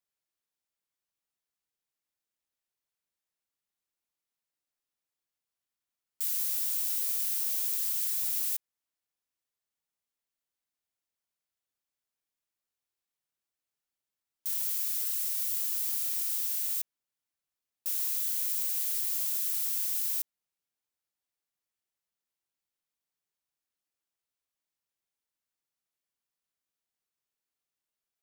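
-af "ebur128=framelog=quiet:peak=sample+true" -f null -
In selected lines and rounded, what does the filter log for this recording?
Integrated loudness:
  I:         -28.1 LUFS
  Threshold: -38.2 LUFS
Loudness range:
  LRA:         8.8 LU
  Threshold: -50.5 LUFS
  LRA low:   -37.1 LUFS
  LRA high:  -28.3 LUFS
Sample peak:
  Peak:      -17.4 dBFS
True peak:
  Peak:      -17.1 dBFS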